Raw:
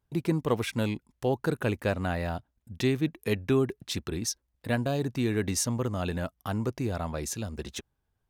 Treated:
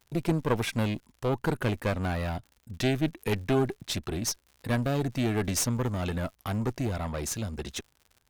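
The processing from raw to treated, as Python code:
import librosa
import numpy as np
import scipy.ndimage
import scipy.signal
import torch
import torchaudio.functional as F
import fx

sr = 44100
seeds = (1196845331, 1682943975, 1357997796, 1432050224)

y = fx.diode_clip(x, sr, knee_db=-31.5)
y = fx.dmg_crackle(y, sr, seeds[0], per_s=89.0, level_db=-48.0)
y = y * 10.0 ** (3.5 / 20.0)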